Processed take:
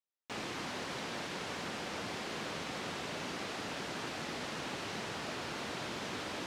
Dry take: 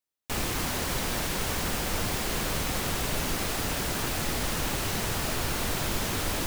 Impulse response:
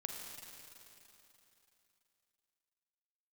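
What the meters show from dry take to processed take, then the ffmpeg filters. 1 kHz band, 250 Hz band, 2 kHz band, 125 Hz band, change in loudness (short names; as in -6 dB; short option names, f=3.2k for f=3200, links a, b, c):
-7.5 dB, -9.0 dB, -7.5 dB, -15.0 dB, -10.5 dB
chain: -af "highpass=180,lowpass=4.9k,volume=-7.5dB"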